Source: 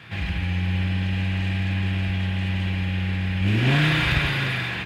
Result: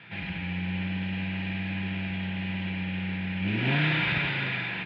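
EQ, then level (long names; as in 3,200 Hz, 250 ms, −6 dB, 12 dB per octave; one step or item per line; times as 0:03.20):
loudspeaker in its box 140–3,900 Hz, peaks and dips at 180 Hz +5 dB, 1,000 Hz +6 dB, 2,300 Hz +4 dB
notch filter 1,100 Hz, Q 5.1
−5.5 dB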